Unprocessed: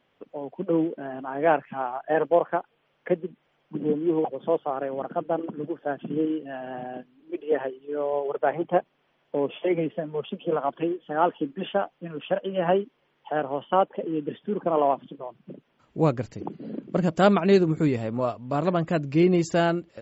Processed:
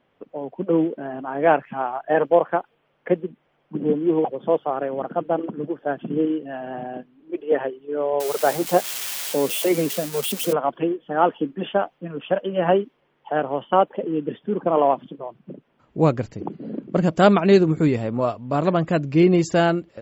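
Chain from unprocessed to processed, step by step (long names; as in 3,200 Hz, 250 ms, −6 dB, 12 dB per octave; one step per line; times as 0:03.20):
0:08.20–0:10.53: spike at every zero crossing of −21 dBFS
one half of a high-frequency compander decoder only
level +4 dB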